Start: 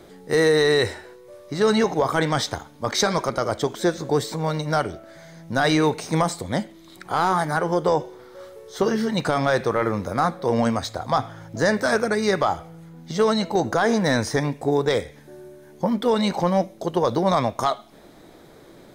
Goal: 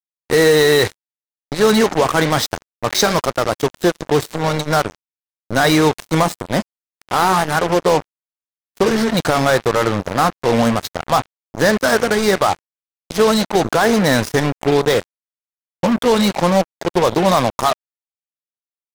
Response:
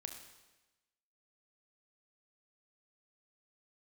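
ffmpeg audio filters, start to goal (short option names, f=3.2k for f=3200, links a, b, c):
-af "acrusher=bits=3:mix=0:aa=0.5,volume=5.5dB"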